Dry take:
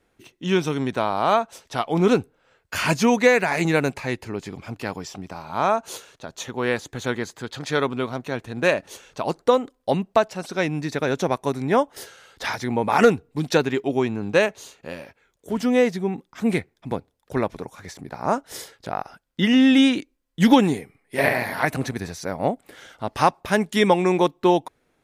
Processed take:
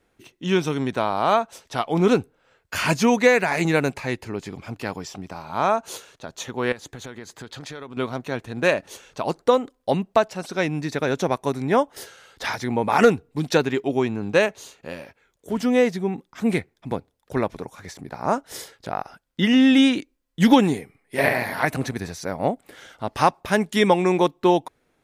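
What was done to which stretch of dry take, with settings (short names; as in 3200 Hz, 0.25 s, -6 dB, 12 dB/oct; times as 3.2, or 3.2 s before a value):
6.72–7.97 compressor 8:1, threshold -33 dBFS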